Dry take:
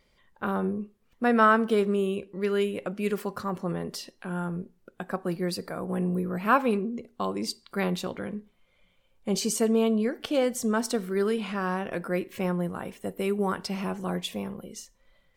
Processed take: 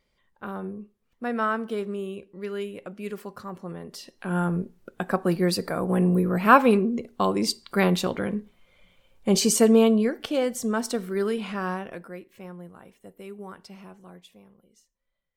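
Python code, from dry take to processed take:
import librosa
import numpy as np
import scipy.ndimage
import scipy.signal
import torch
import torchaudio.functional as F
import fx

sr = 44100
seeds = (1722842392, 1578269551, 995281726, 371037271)

y = fx.gain(x, sr, db=fx.line((3.89, -6.0), (4.36, 6.5), (9.76, 6.5), (10.36, 0.0), (11.7, 0.0), (12.22, -13.0), (13.73, -13.0), (14.4, -19.5)))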